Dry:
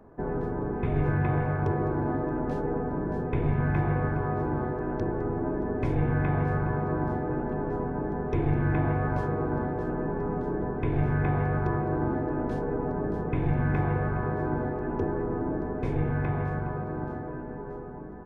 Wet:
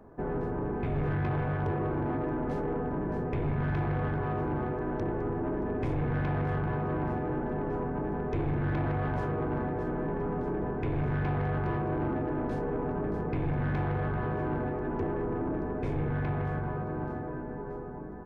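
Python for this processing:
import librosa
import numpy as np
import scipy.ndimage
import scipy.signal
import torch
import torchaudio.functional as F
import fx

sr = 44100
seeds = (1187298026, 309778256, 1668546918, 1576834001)

y = 10.0 ** (-25.0 / 20.0) * np.tanh(x / 10.0 ** (-25.0 / 20.0))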